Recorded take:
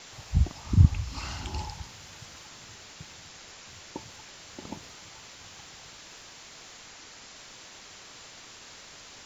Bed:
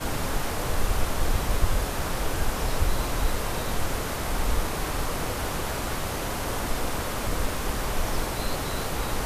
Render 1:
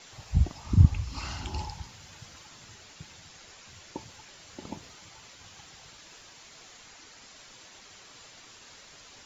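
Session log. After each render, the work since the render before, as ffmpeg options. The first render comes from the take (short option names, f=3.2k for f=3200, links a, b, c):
-af "afftdn=nr=6:nf=-49"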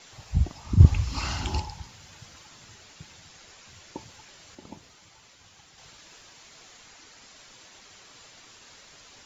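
-filter_complex "[0:a]asettb=1/sr,asplit=3[a][b][c];[a]atrim=end=0.804[d];[b]atrim=start=0.8:end=1.6,asetpts=PTS-STARTPTS,afade=t=in:d=0.004:c=qsin,afade=t=out:st=0.796:d=0.004:c=qsin,acontrast=56[e];[c]atrim=start=1.596[f];[d][e]acrossfade=d=0.004:c1=hsin:c2=qsin[g];[g][f]acrossfade=d=0.004:c1=qsin:c2=hsin,asplit=3[h][i][j];[h]atrim=end=4.552[k];[i]atrim=start=4.548:end=5.782,asetpts=PTS-STARTPTS,volume=-4.5dB[l];[j]atrim=start=5.778[m];[k][l]acrossfade=d=0.004:c1=hsin:c2=hsin[n];[n][m]acrossfade=d=0.004:c1=hsin:c2=hsin"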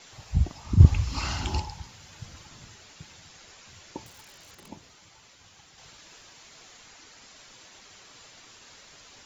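-filter_complex "[0:a]asettb=1/sr,asplit=3[a][b][c];[a]atrim=end=2.184[d];[b]atrim=start=2.18:end=2.68,asetpts=PTS-STARTPTS,afade=t=in:d=0.004:c=qsin,afade=t=out:st=0.496:d=0.004:c=qsin,lowshelf=f=220:g=10[e];[c]atrim=start=2.676[f];[d][e]acrossfade=d=0.004:c1=hsin:c2=qsin[g];[g][f]acrossfade=d=0.004:c1=qsin:c2=hsin,asettb=1/sr,asplit=3[h][i][j];[h]atrim=end=4.064[k];[i]atrim=start=4.06:end=4.68,asetpts=PTS-STARTPTS,afade=t=in:d=0.004:c=qsin,afade=t=out:st=0.616:d=0.004:c=qsin,aeval=exprs='(mod(126*val(0)+1,2)-1)/126':c=same[l];[j]atrim=start=4.676[m];[k][l]acrossfade=d=0.004:c1=hsin:c2=qsin[n];[n][m]acrossfade=d=0.004:c1=qsin:c2=hsin"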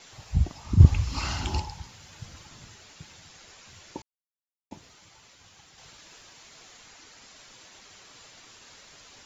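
-filter_complex "[0:a]asplit=3[a][b][c];[a]atrim=end=4.02,asetpts=PTS-STARTPTS,afade=t=out:st=4.016:d=0.004:c=hsin[d];[b]atrim=start=4.02:end=4.71,asetpts=PTS-STARTPTS,volume=0[e];[c]atrim=start=4.71,asetpts=PTS-STARTPTS,afade=t=in:d=0.004:c=hsin[f];[d][e][f]concat=n=3:v=0:a=1"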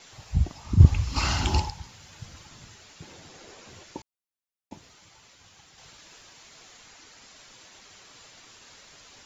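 -filter_complex "[0:a]asettb=1/sr,asplit=3[a][b][c];[a]atrim=end=3.024[d];[b]atrim=start=3.02:end=3.84,asetpts=PTS-STARTPTS,afade=t=in:d=0.004:c=qsin,afade=t=out:st=0.816:d=0.004:c=qsin,equalizer=f=380:w=0.65:g=12[e];[c]atrim=start=3.836[f];[d][e]acrossfade=d=0.004:c1=hsin:c2=qsin[g];[g][f]acrossfade=d=0.004:c1=qsin:c2=hsin,asplit=3[h][i][j];[h]atrim=end=1.162[k];[i]atrim=start=1.158:end=1.702,asetpts=PTS-STARTPTS,volume=5dB[l];[j]atrim=start=1.698[m];[k][l]acrossfade=d=0.004:c1=hsin:c2=hsin[n];[n][m]acrossfade=d=0.004:c1=hsin:c2=hsin"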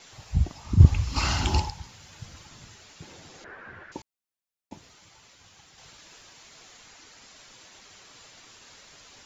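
-filter_complex "[0:a]asettb=1/sr,asplit=3[a][b][c];[a]atrim=end=3.444[d];[b]atrim=start=3.44:end=3.92,asetpts=PTS-STARTPTS,afade=t=in:d=0.004:c=qsin,afade=t=out:st=0.476:d=0.004:c=qsin,lowpass=f=1.6k:t=q:w=6[e];[c]atrim=start=3.916[f];[d][e]acrossfade=d=0.004:c1=hsin:c2=qsin[g];[g][f]acrossfade=d=0.004:c1=qsin:c2=hsin"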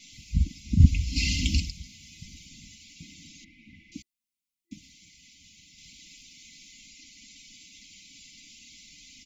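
-af "afftfilt=real='re*(1-between(b*sr/4096,340,2000))':imag='im*(1-between(b*sr/4096,340,2000))':win_size=4096:overlap=0.75,aecho=1:1:4.4:0.58"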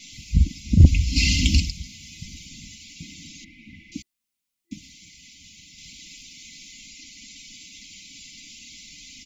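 -af "acontrast=71"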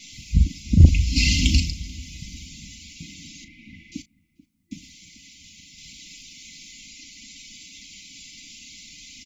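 -filter_complex "[0:a]asplit=2[a][b];[b]adelay=36,volume=-12.5dB[c];[a][c]amix=inputs=2:normalize=0,asplit=2[d][e];[e]adelay=437,lowpass=f=1k:p=1,volume=-19dB,asplit=2[f][g];[g]adelay=437,lowpass=f=1k:p=1,volume=0.43,asplit=2[h][i];[i]adelay=437,lowpass=f=1k:p=1,volume=0.43[j];[d][f][h][j]amix=inputs=4:normalize=0"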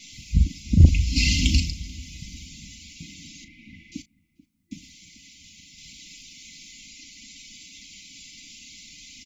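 -af "volume=-1.5dB"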